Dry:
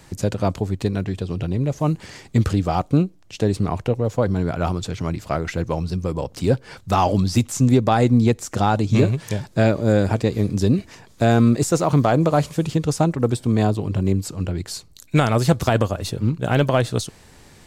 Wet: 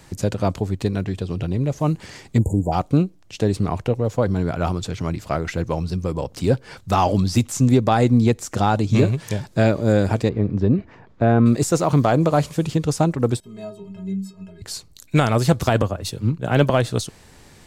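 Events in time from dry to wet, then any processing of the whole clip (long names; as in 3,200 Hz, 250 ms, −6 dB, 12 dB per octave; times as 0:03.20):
0:02.39–0:02.72: time-frequency box erased 1,000–6,700 Hz
0:10.29–0:11.46: low-pass filter 1,700 Hz
0:13.40–0:14.62: stiff-string resonator 190 Hz, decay 0.39 s, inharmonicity 0.03
0:15.82–0:16.70: multiband upward and downward expander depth 70%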